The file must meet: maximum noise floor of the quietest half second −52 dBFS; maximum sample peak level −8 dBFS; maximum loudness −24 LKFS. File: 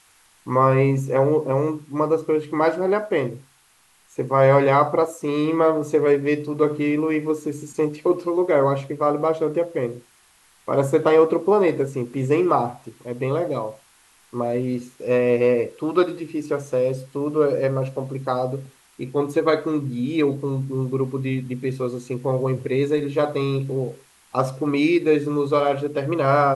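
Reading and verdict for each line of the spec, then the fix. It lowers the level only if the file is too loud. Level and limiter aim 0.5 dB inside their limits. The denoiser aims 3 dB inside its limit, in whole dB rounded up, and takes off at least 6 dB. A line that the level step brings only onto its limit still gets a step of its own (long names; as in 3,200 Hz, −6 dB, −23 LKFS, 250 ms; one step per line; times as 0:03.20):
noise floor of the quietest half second −58 dBFS: in spec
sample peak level −5.0 dBFS: out of spec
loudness −21.5 LKFS: out of spec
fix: level −3 dB
brickwall limiter −8.5 dBFS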